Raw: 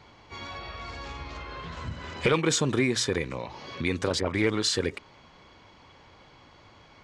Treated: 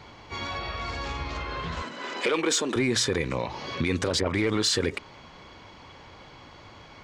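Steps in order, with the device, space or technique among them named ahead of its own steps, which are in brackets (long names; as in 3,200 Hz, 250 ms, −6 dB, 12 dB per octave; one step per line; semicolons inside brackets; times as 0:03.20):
soft clipper into limiter (soft clipping −14 dBFS, distortion −21 dB; brickwall limiter −22 dBFS, peak gain reduction 6.5 dB)
0:01.82–0:02.76: high-pass filter 260 Hz 24 dB per octave
level +6 dB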